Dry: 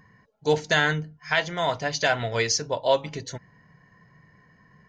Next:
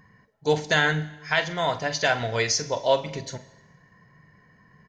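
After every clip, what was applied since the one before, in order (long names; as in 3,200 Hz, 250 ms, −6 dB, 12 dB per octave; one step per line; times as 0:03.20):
double-tracking delay 45 ms −13.5 dB
four-comb reverb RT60 1.1 s, combs from 29 ms, DRR 15 dB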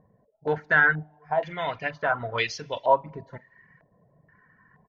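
reverb reduction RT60 0.54 s
low-pass on a step sequencer 2.1 Hz 620–3,000 Hz
level −5 dB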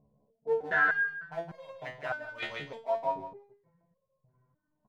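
adaptive Wiener filter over 25 samples
repeating echo 162 ms, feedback 25%, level −6 dB
step-sequenced resonator 3.3 Hz 71–540 Hz
level +2.5 dB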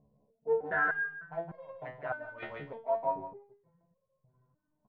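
low-pass filter 1,400 Hz 12 dB per octave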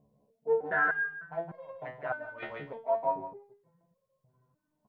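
low-shelf EQ 65 Hz −12 dB
level +2 dB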